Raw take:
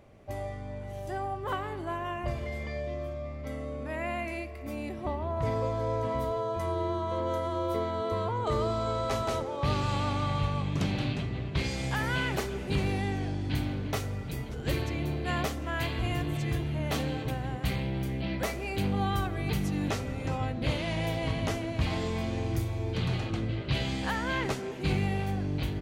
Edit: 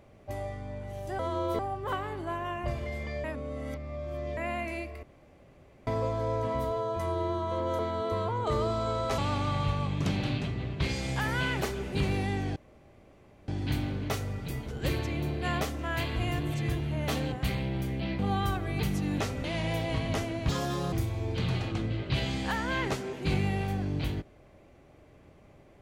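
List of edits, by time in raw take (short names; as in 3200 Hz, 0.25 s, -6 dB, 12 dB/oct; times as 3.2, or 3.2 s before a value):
2.84–3.97 reverse
4.63–5.47 room tone
7.39–7.79 move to 1.19
9.18–9.93 cut
13.31 insert room tone 0.92 s
17.15–17.53 cut
18.4–18.89 cut
20.14–20.77 cut
21.82–22.51 speed 159%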